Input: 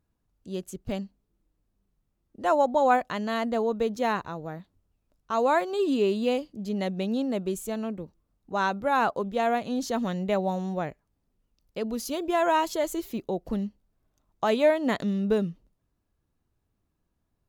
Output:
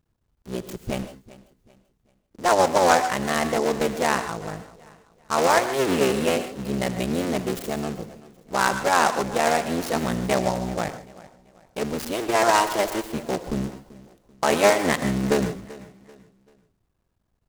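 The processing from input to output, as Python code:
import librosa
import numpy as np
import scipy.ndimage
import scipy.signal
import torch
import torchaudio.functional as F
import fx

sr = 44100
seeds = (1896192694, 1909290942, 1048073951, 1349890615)

y = fx.cycle_switch(x, sr, every=3, mode='muted')
y = fx.peak_eq(y, sr, hz=280.0, db=-3.5, octaves=0.43)
y = fx.rev_gated(y, sr, seeds[0], gate_ms=170, shape='rising', drr_db=10.0)
y = fx.dynamic_eq(y, sr, hz=2100.0, q=1.3, threshold_db=-45.0, ratio=4.0, max_db=5)
y = fx.echo_feedback(y, sr, ms=387, feedback_pct=36, wet_db=-19.5)
y = fx.vibrato(y, sr, rate_hz=3.7, depth_cents=10.0)
y = fx.noise_mod_delay(y, sr, seeds[1], noise_hz=5200.0, depth_ms=0.034)
y = y * 10.0 ** (5.0 / 20.0)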